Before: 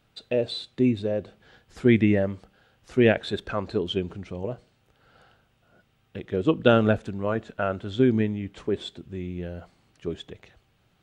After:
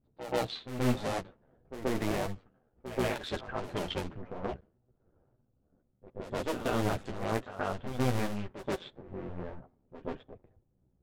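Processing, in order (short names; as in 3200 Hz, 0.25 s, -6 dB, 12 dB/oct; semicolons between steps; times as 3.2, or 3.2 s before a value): cycle switcher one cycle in 2, muted; low-pass opened by the level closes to 400 Hz, open at -23 dBFS; limiter -16.5 dBFS, peak gain reduction 11 dB; chorus voices 4, 0.85 Hz, delay 12 ms, depth 4.3 ms; pre-echo 0.13 s -12 dB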